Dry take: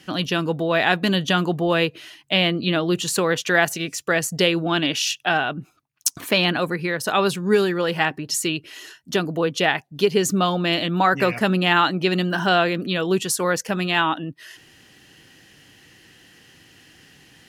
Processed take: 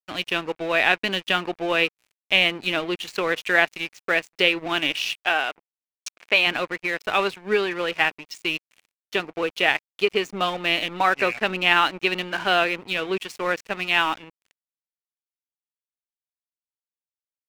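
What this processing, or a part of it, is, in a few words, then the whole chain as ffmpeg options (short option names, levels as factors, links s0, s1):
pocket radio on a weak battery: -filter_complex "[0:a]highpass=320,lowpass=4100,aeval=exprs='sgn(val(0))*max(abs(val(0))-0.0188,0)':c=same,equalizer=f=2400:t=o:w=0.55:g=8.5,asettb=1/sr,asplit=3[s0][s1][s2];[s0]atrim=end=5.164[s3];[s1]atrim=start=5.16:end=6.47,asetpts=PTS-STARTPTS,afade=t=in:d=0.004:c=qsin,afade=t=out:st=1.306:d=0.004:c=qsin,bass=f=250:g=-11,treble=f=4000:g=-2[s4];[s2]atrim=start=6.466[s5];[s3][s4]acrossfade=d=0.004:c1=hsin:c2=qsin[s6];[s6][s5]acrossfade=d=0.004:c1=qsin:c2=hsin,volume=0.841"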